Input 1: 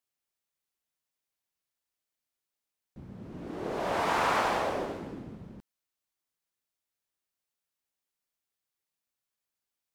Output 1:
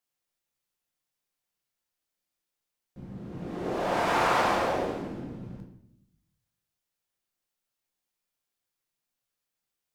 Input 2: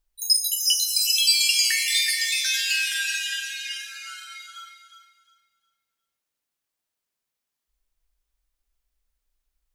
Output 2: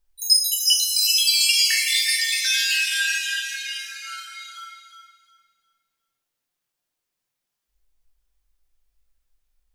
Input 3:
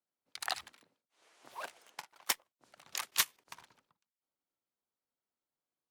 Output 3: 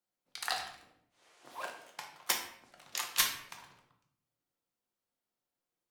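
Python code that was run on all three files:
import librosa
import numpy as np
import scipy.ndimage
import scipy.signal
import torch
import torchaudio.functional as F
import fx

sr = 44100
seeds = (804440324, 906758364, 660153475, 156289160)

y = fx.room_shoebox(x, sr, seeds[0], volume_m3=160.0, walls='mixed', distance_m=0.87)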